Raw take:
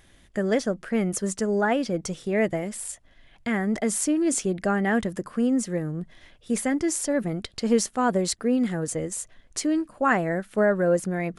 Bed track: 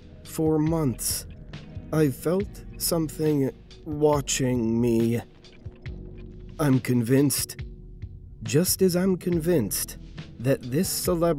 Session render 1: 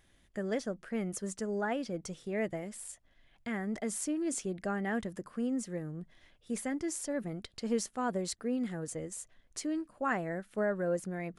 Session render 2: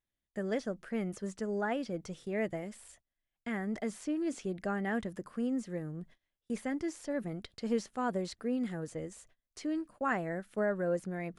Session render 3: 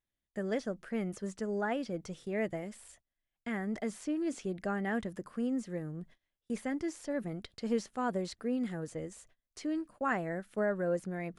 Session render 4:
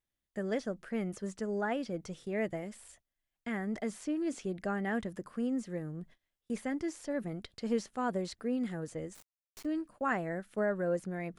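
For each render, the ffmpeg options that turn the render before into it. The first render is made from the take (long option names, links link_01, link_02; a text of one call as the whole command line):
ffmpeg -i in.wav -af "volume=-10.5dB" out.wav
ffmpeg -i in.wav -filter_complex "[0:a]agate=range=-25dB:threshold=-53dB:ratio=16:detection=peak,acrossover=split=4700[link_01][link_02];[link_02]acompressor=threshold=-54dB:ratio=4:attack=1:release=60[link_03];[link_01][link_03]amix=inputs=2:normalize=0" out.wav
ffmpeg -i in.wav -af anull out.wav
ffmpeg -i in.wav -filter_complex "[0:a]asplit=3[link_01][link_02][link_03];[link_01]afade=type=out:start_time=9.14:duration=0.02[link_04];[link_02]acrusher=bits=5:dc=4:mix=0:aa=0.000001,afade=type=in:start_time=9.14:duration=0.02,afade=type=out:start_time=9.64:duration=0.02[link_05];[link_03]afade=type=in:start_time=9.64:duration=0.02[link_06];[link_04][link_05][link_06]amix=inputs=3:normalize=0" out.wav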